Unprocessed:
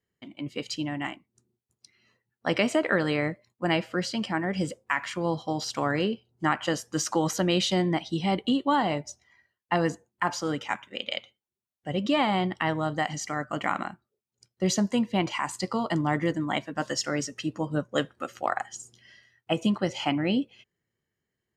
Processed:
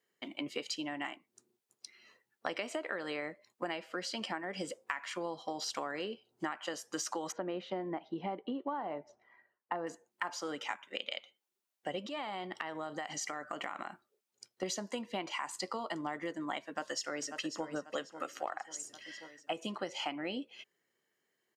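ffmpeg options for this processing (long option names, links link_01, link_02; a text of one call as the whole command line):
ffmpeg -i in.wav -filter_complex "[0:a]asettb=1/sr,asplit=3[link_01][link_02][link_03];[link_01]atrim=end=7.324[link_04];[link_02]atrim=start=7.32:end=9.87,asetpts=PTS-STARTPTS,afade=type=in:duration=0.004:curve=qsin,afade=type=out:start_time=2.546:duration=0.004:curve=qsin,lowpass=1300[link_05];[link_03]atrim=start=9.866[link_06];[link_04][link_05]acrossfade=duration=0.004:curve1=hsin:curve2=qsin[link_07];[link_07][link_06]acrossfade=duration=0.004:curve1=qsin:curve2=hsin,asettb=1/sr,asplit=3[link_08][link_09][link_10];[link_08]atrim=end=12.064[link_11];[link_09]atrim=start=12.06:end=14.63,asetpts=PTS-STARTPTS,afade=type=in:duration=0.004:curve=qsin,afade=type=out:start_time=2.566:duration=0.004:curve=qsin,acompressor=threshold=-37dB:ratio=4:attack=3.2:release=140:knee=1:detection=peak[link_12];[link_10]atrim=start=14.626[link_13];[link_11][link_12]acrossfade=duration=0.004:curve1=hsin:curve2=qsin[link_14];[link_14][link_13]acrossfade=duration=0.004:curve1=qsin:curve2=hsin,asplit=2[link_15][link_16];[link_16]afade=type=in:start_time=16.67:duration=0.01,afade=type=out:start_time=17.69:duration=0.01,aecho=0:1:540|1080|1620|2160|2700:0.199526|0.0997631|0.0498816|0.0249408|0.0124704[link_17];[link_15][link_17]amix=inputs=2:normalize=0,highpass=370,acompressor=threshold=-40dB:ratio=8,volume=5dB" out.wav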